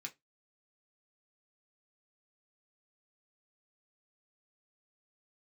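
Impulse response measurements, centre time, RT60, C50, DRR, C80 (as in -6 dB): 7 ms, 0.15 s, 22.0 dB, 0.5 dB, 32.0 dB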